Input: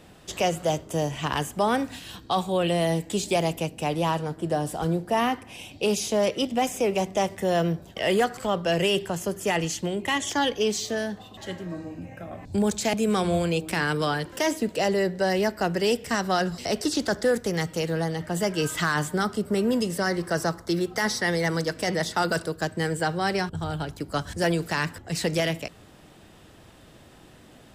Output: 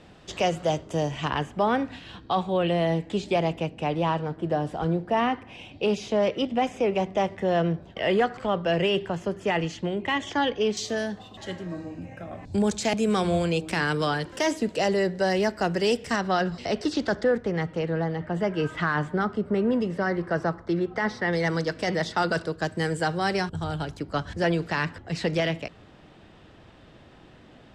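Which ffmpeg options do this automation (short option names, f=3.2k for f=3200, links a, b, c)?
-af "asetnsamples=n=441:p=0,asendcmd='1.3 lowpass f 3100;10.77 lowpass f 7500;16.16 lowpass f 3800;17.24 lowpass f 2200;21.33 lowpass f 4700;22.65 lowpass f 7900;24 lowpass f 3900',lowpass=5.3k"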